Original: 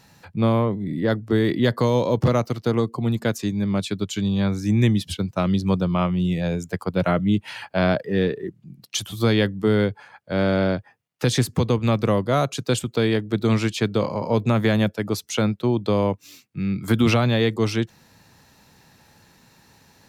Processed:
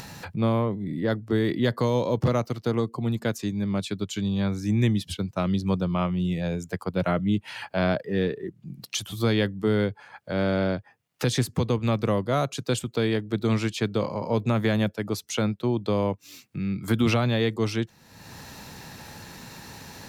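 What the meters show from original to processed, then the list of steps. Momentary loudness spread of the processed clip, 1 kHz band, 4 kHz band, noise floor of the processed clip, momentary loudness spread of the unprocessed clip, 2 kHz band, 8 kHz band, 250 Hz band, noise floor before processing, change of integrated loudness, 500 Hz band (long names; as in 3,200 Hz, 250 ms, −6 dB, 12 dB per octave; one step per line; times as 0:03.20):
15 LU, −4.0 dB, −4.0 dB, −59 dBFS, 7 LU, −4.0 dB, −3.5 dB, −4.0 dB, −57 dBFS, −4.0 dB, −4.0 dB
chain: upward compression, threshold −24 dBFS
level −4 dB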